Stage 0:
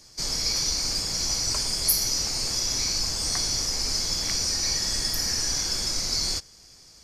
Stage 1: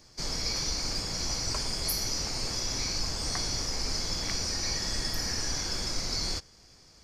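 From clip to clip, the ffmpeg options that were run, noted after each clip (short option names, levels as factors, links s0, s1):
-af "equalizer=f=12000:t=o:w=2.1:g=-11"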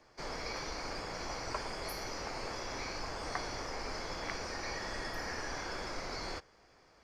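-filter_complex "[0:a]acrossover=split=360 2400:gain=0.224 1 0.112[s0][s1][s2];[s0][s1][s2]amix=inputs=3:normalize=0,volume=1.26"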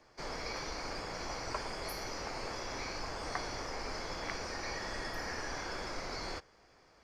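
-af anull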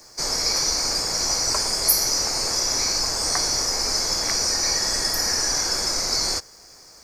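-af "aexciter=amount=11.6:drive=2.6:freq=4600,volume=2.82"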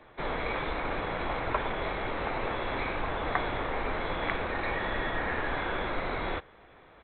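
-af "aresample=8000,aresample=44100"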